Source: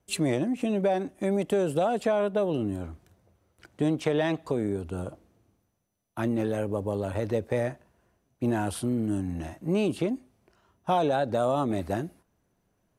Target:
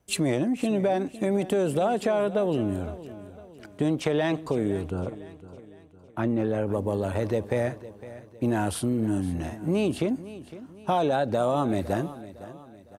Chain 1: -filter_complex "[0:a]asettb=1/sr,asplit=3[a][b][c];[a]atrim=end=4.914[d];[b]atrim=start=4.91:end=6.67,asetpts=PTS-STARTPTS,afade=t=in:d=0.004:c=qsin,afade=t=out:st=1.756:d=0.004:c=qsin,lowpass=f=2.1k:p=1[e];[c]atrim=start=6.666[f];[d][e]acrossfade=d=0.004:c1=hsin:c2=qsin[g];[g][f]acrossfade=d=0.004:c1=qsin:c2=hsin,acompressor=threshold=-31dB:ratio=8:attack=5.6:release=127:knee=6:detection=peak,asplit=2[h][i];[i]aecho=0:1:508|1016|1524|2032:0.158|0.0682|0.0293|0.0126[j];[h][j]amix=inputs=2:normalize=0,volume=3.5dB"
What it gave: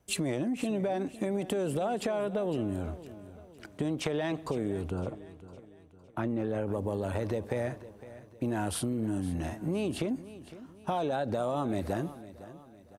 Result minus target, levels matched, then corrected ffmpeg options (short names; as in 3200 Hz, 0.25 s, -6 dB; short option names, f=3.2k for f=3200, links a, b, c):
compressor: peak gain reduction +7.5 dB
-filter_complex "[0:a]asettb=1/sr,asplit=3[a][b][c];[a]atrim=end=4.914[d];[b]atrim=start=4.91:end=6.67,asetpts=PTS-STARTPTS,afade=t=in:d=0.004:c=qsin,afade=t=out:st=1.756:d=0.004:c=qsin,lowpass=f=2.1k:p=1[e];[c]atrim=start=6.666[f];[d][e]acrossfade=d=0.004:c1=hsin:c2=qsin[g];[g][f]acrossfade=d=0.004:c1=qsin:c2=hsin,acompressor=threshold=-22dB:ratio=8:attack=5.6:release=127:knee=6:detection=peak,asplit=2[h][i];[i]aecho=0:1:508|1016|1524|2032:0.158|0.0682|0.0293|0.0126[j];[h][j]amix=inputs=2:normalize=0,volume=3.5dB"